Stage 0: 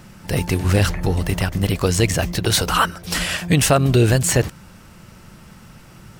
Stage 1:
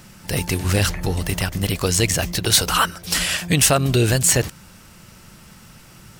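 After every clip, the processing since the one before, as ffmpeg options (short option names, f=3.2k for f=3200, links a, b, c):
-af "highshelf=f=2.5k:g=8,volume=-3dB"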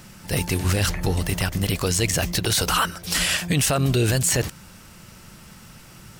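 -af "alimiter=limit=-11dB:level=0:latency=1:release=25"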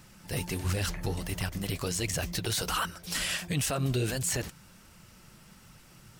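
-af "flanger=delay=0.7:depth=8.1:regen=-41:speed=1.4:shape=triangular,volume=-5.5dB"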